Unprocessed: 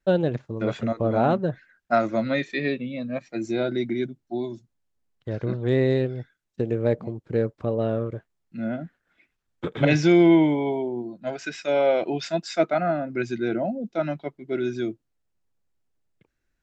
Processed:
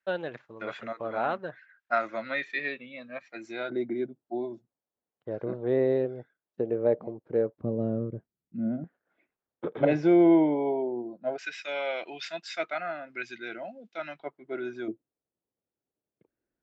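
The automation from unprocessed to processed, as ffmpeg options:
-af "asetnsamples=n=441:p=0,asendcmd='3.7 bandpass f 600;7.58 bandpass f 210;8.84 bandpass f 560;11.38 bandpass f 2400;14.2 bandpass f 1000;14.88 bandpass f 410',bandpass=f=1700:t=q:w=1:csg=0"

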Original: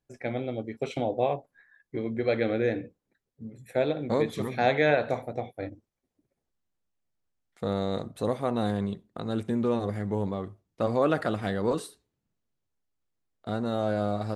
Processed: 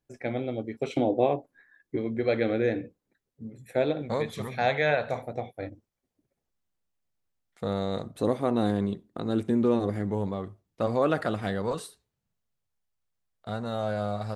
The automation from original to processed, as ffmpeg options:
-af "asetnsamples=n=441:p=0,asendcmd='0.92 equalizer g 9.5;1.96 equalizer g 1.5;4.02 equalizer g -9.5;5.15 equalizer g -2;8.15 equalizer g 6;10.1 equalizer g -1;11.62 equalizer g -9.5',equalizer=f=310:t=o:w=0.86:g=2"

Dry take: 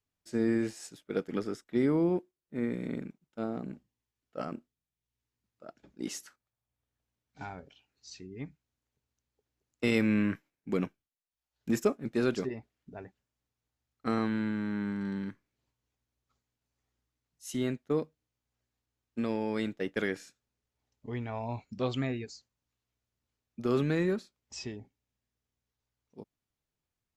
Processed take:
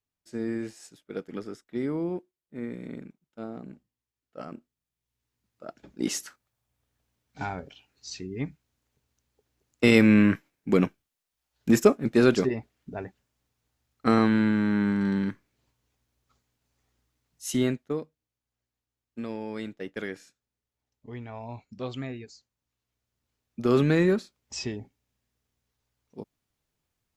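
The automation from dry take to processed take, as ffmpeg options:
-af "volume=8.91,afade=t=in:st=4.44:d=1.73:silence=0.251189,afade=t=out:st=17.47:d=0.52:silence=0.251189,afade=t=in:st=22.31:d=1.58:silence=0.316228"

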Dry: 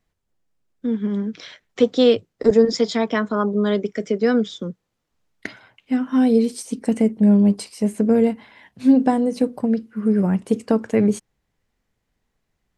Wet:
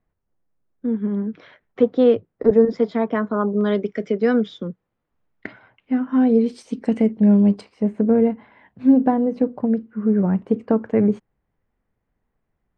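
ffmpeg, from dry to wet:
-af "asetnsamples=n=441:p=0,asendcmd='3.61 lowpass f 3000;4.67 lowpass f 1900;6.46 lowpass f 3400;7.61 lowpass f 1600',lowpass=1500"

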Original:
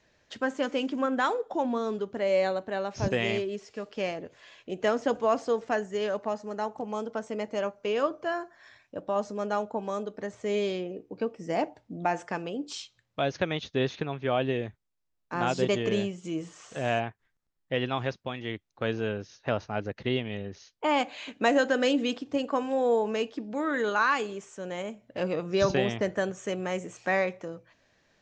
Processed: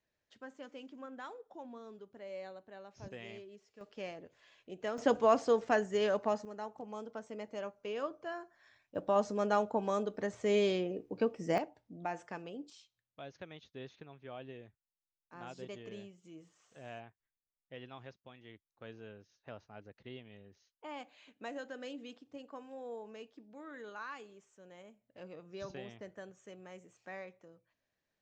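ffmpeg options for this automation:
-af "asetnsamples=n=441:p=0,asendcmd='3.81 volume volume -12dB;4.98 volume volume -1.5dB;6.45 volume volume -11dB;8.95 volume volume -1dB;11.58 volume volume -11dB;12.7 volume volume -20dB',volume=0.1"

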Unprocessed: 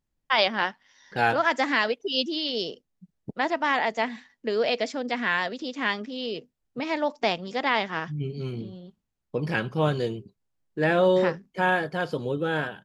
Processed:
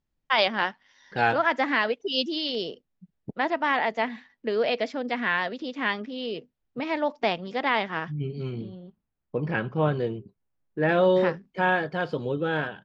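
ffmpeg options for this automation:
-af "asetnsamples=n=441:p=0,asendcmd='1.38 lowpass f 3200;1.94 lowpass f 6200;2.55 lowpass f 3700;8.75 lowpass f 2200;10.89 lowpass f 4200',lowpass=5100"

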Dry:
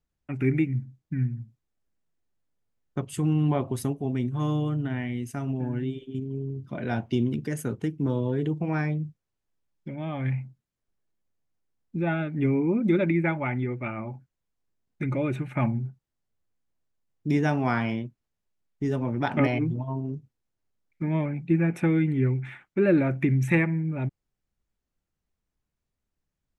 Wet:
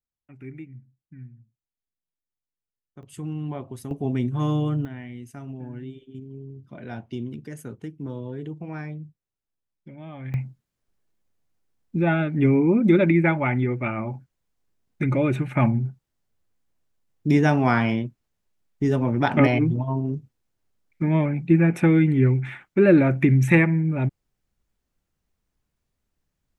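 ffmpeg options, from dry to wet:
-af "asetnsamples=n=441:p=0,asendcmd='3.03 volume volume -7.5dB;3.91 volume volume 3dB;4.85 volume volume -7dB;10.34 volume volume 5.5dB',volume=0.168"

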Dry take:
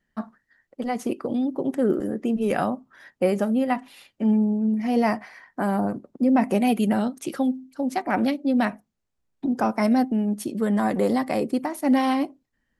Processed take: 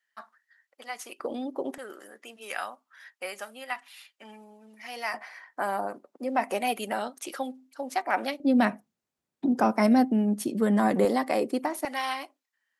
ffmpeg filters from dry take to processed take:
-af "asetnsamples=n=441:p=0,asendcmd='1.2 highpass f 470;1.78 highpass f 1400;5.14 highpass f 610;8.4 highpass f 150;11.05 highpass f 320;11.85 highpass f 1100',highpass=1300"

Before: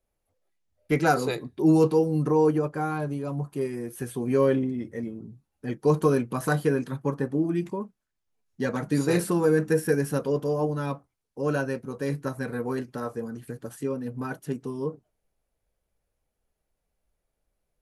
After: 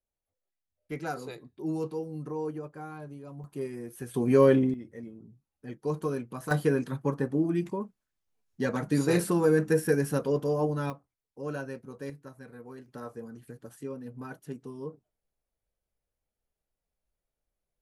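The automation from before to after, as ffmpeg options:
-af "asetnsamples=n=441:p=0,asendcmd='3.44 volume volume -6dB;4.14 volume volume 2dB;4.74 volume volume -9.5dB;6.51 volume volume -1.5dB;10.9 volume volume -9dB;12.1 volume volume -16dB;12.86 volume volume -8.5dB',volume=0.224"

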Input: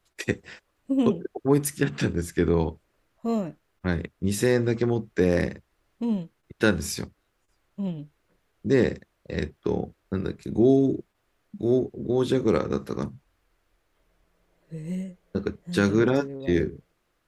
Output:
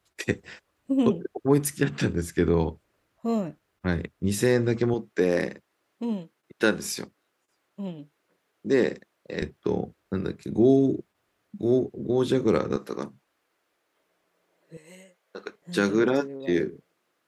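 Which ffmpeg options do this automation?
-af "asetnsamples=n=441:p=0,asendcmd='4.94 highpass f 230;9.42 highpass f 94;12.76 highpass f 270;14.77 highpass f 700;15.62 highpass f 210',highpass=57"

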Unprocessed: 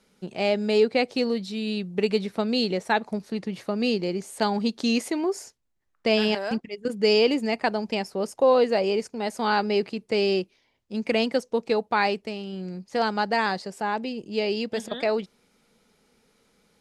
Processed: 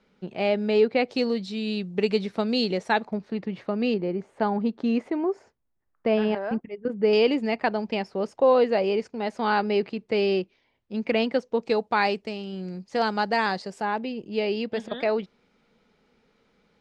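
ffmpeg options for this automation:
-af "asetnsamples=n=441:p=0,asendcmd='1.11 lowpass f 6400;3.05 lowpass f 2800;3.94 lowpass f 1600;7.13 lowpass f 3500;11.62 lowpass f 6900;13.85 lowpass f 3500',lowpass=3200"

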